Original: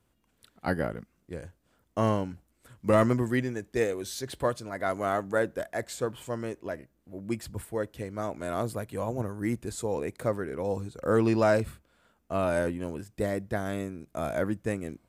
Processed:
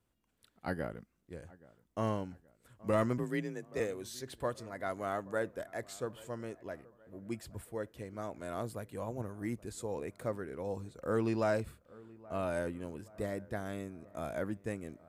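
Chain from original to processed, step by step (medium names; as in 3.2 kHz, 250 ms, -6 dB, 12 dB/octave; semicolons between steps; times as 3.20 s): feedback echo behind a low-pass 825 ms, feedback 48%, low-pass 1.9 kHz, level -22 dB; 3.18–3.80 s: frequency shift +35 Hz; trim -8 dB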